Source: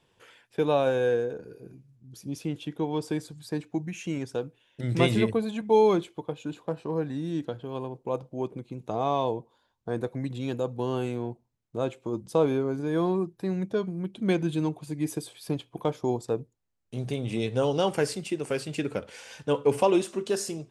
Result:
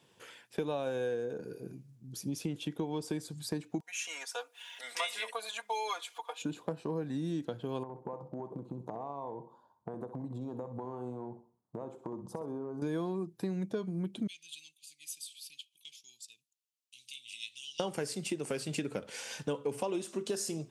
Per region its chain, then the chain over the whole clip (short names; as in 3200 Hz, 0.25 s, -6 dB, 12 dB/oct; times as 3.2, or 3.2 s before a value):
3.8–6.42 upward compressor, threshold -38 dBFS + HPF 790 Hz 24 dB/oct + comb 4.2 ms, depth 80%
7.83–12.82 resonant high shelf 1500 Hz -14 dB, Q 3 + compressor 16:1, threshold -37 dBFS + feedback echo 64 ms, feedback 35%, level -11.5 dB
14.27–17.8 elliptic high-pass 2700 Hz, stop band 50 dB + high shelf 3500 Hz -7.5 dB
whole clip: HPF 160 Hz 12 dB/oct; tone controls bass +5 dB, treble +5 dB; compressor 6:1, threshold -33 dBFS; gain +1 dB